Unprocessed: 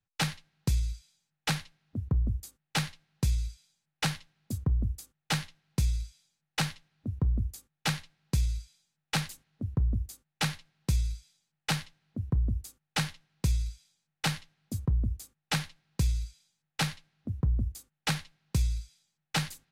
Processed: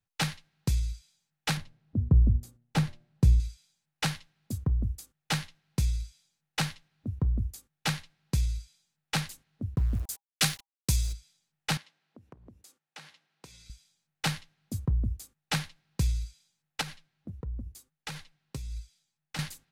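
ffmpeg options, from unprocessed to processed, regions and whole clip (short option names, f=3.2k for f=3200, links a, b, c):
-filter_complex "[0:a]asettb=1/sr,asplit=3[a][b][c];[a]atrim=end=1.574[d];[b]atrim=start=1.57:end=3.4,asetpts=PTS-STARTPTS,afade=t=in:d=0.004:c=qsin,afade=t=out:st=1.826:d=0.004:c=qsin,tiltshelf=f=870:g=7,bandreject=f=118.8:t=h:w=4,bandreject=f=237.6:t=h:w=4,bandreject=f=356.4:t=h:w=4,bandreject=f=475.2:t=h:w=4,bandreject=f=594:t=h:w=4,bandreject=f=712.8:t=h:w=4[e];[c]atrim=start=3.396[f];[d][e]acrossfade=d=0.004:c1=hsin:c2=qsin[g];[g][f]acrossfade=d=0.004:c1=qsin:c2=hsin,asettb=1/sr,asplit=3[h][i][j];[h]atrim=end=9.764[k];[i]atrim=start=9.76:end=11.13,asetpts=PTS-STARTPTS,afade=t=in:d=0.004:c=qsin,afade=t=out:st=1.366:d=0.004:c=qsin,highshelf=f=3.7k:g=11.5,aeval=exprs='val(0)*gte(abs(val(0)),0.00841)':c=same,asuperstop=centerf=880:order=20:qfactor=6.6[l];[j]atrim=start=11.126[m];[k][l]acrossfade=d=0.004:c1=hsin:c2=qsin[n];[n][m]acrossfade=d=0.004:c1=qsin:c2=hsin,asettb=1/sr,asplit=3[o][p][q];[o]atrim=end=11.774[r];[p]atrim=start=11.77:end=13.7,asetpts=PTS-STARTPTS,afade=t=in:d=0.004:c=qsin,afade=t=out:st=1.926:d=0.004:c=qsin,highpass=300,highshelf=f=9k:g=-9.5,acompressor=threshold=-51dB:ratio=2.5:attack=3.2:release=140:knee=1:detection=peak[s];[q]atrim=start=13.696[t];[r][s]acrossfade=d=0.004:c1=hsin:c2=qsin[u];[u][t]acrossfade=d=0.004:c1=qsin:c2=hsin,asettb=1/sr,asplit=3[v][w][x];[v]atrim=end=16.814[y];[w]atrim=start=16.81:end=19.39,asetpts=PTS-STARTPTS,afade=t=in:d=0.004:c=qsin,afade=t=out:st=2.576:d=0.004:c=qsin,acompressor=threshold=-29dB:ratio=6:attack=3.2:release=140:knee=1:detection=peak,flanger=delay=1.9:depth=6.4:regen=47:speed=1.5:shape=sinusoidal[z];[x]atrim=start=19.386[aa];[y][z]acrossfade=d=0.004:c1=hsin:c2=qsin[ab];[ab][aa]acrossfade=d=0.004:c1=qsin:c2=hsin"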